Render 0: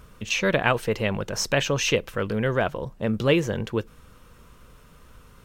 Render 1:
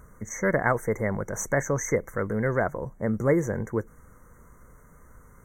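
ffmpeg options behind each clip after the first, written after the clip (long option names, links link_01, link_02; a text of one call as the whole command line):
ffmpeg -i in.wav -af "afftfilt=real='re*(1-between(b*sr/4096,2200,5800))':imag='im*(1-between(b*sr/4096,2200,5800))':win_size=4096:overlap=0.75,volume=-1.5dB" out.wav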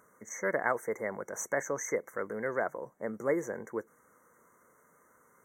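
ffmpeg -i in.wav -af "highpass=330,volume=-5.5dB" out.wav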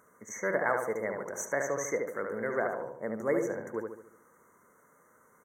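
ffmpeg -i in.wav -filter_complex "[0:a]asplit=2[link_01][link_02];[link_02]adelay=73,lowpass=frequency=2200:poles=1,volume=-3.5dB,asplit=2[link_03][link_04];[link_04]adelay=73,lowpass=frequency=2200:poles=1,volume=0.49,asplit=2[link_05][link_06];[link_06]adelay=73,lowpass=frequency=2200:poles=1,volume=0.49,asplit=2[link_07][link_08];[link_08]adelay=73,lowpass=frequency=2200:poles=1,volume=0.49,asplit=2[link_09][link_10];[link_10]adelay=73,lowpass=frequency=2200:poles=1,volume=0.49,asplit=2[link_11][link_12];[link_12]adelay=73,lowpass=frequency=2200:poles=1,volume=0.49[link_13];[link_01][link_03][link_05][link_07][link_09][link_11][link_13]amix=inputs=7:normalize=0" out.wav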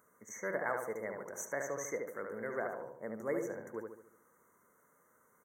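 ffmpeg -i in.wav -af "highshelf=frequency=12000:gain=9.5,volume=-7dB" out.wav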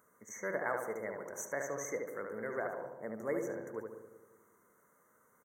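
ffmpeg -i in.wav -filter_complex "[0:a]asplit=2[link_01][link_02];[link_02]adelay=190,lowpass=frequency=880:poles=1,volume=-10.5dB,asplit=2[link_03][link_04];[link_04]adelay=190,lowpass=frequency=880:poles=1,volume=0.46,asplit=2[link_05][link_06];[link_06]adelay=190,lowpass=frequency=880:poles=1,volume=0.46,asplit=2[link_07][link_08];[link_08]adelay=190,lowpass=frequency=880:poles=1,volume=0.46,asplit=2[link_09][link_10];[link_10]adelay=190,lowpass=frequency=880:poles=1,volume=0.46[link_11];[link_01][link_03][link_05][link_07][link_09][link_11]amix=inputs=6:normalize=0" out.wav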